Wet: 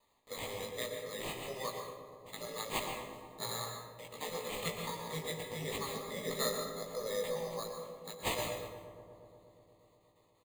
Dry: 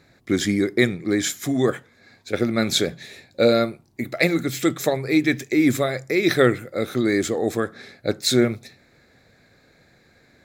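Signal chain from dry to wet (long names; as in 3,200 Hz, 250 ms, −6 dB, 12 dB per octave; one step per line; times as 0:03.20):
0:05.76–0:07.77: RIAA equalisation playback
gate on every frequency bin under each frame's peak −15 dB weak
noise gate with hold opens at −56 dBFS
low-shelf EQ 250 Hz −6.5 dB
phaser with its sweep stopped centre 480 Hz, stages 8
tuned comb filter 200 Hz, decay 1.1 s, mix 70%
decimation without filtering 8×
Butterworth band-reject 1,500 Hz, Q 1.9
double-tracking delay 18 ms −4 dB
feedback echo with a low-pass in the loop 120 ms, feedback 83%, low-pass 2,000 Hz, level −12 dB
dense smooth reverb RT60 0.88 s, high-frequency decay 0.55×, pre-delay 105 ms, DRR 4 dB
level +6 dB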